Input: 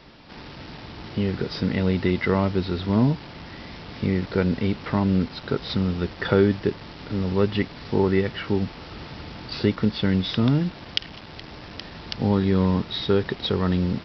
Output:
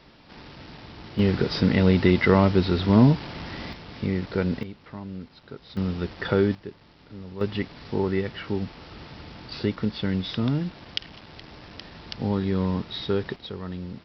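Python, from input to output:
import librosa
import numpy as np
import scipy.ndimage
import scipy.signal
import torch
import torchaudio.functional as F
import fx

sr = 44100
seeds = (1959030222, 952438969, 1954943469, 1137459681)

y = fx.gain(x, sr, db=fx.steps((0.0, -4.0), (1.19, 3.5), (3.73, -3.0), (4.63, -15.5), (5.77, -3.0), (6.55, -14.5), (7.41, -4.5), (13.36, -12.0)))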